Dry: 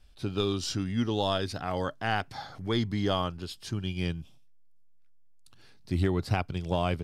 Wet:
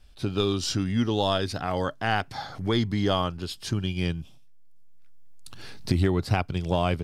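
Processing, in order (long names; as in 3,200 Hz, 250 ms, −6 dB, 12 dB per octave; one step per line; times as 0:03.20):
camcorder AGC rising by 7.3 dB per second
level +3.5 dB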